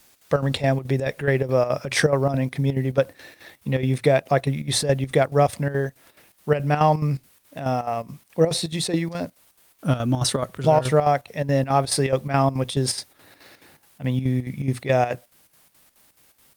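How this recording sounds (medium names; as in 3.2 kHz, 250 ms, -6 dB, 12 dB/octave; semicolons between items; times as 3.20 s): a quantiser's noise floor 10-bit, dither triangular; chopped level 4.7 Hz, depth 65%, duty 70%; Opus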